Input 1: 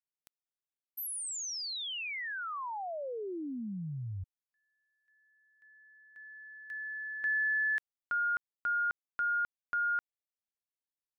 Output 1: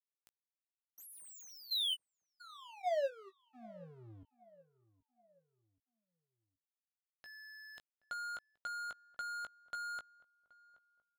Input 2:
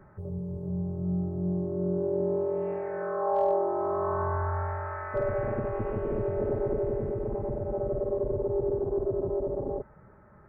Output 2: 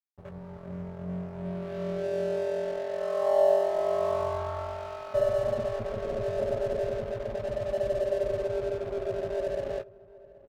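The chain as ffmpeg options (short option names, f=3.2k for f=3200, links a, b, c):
-filter_complex "[0:a]superequalizer=6b=0.447:8b=3.55:11b=0.398:12b=0.316:13b=3.16,aeval=exprs='sgn(val(0))*max(abs(val(0))-0.0119,0)':c=same,asplit=2[a][b];[b]adelay=18,volume=-9dB[c];[a][c]amix=inputs=2:normalize=0,asplit=2[d][e];[e]adelay=775,lowpass=f=1.3k:p=1,volume=-20dB,asplit=2[f][g];[g]adelay=775,lowpass=f=1.3k:p=1,volume=0.43,asplit=2[h][i];[i]adelay=775,lowpass=f=1.3k:p=1,volume=0.43[j];[f][h][j]amix=inputs=3:normalize=0[k];[d][k]amix=inputs=2:normalize=0,volume=-4dB"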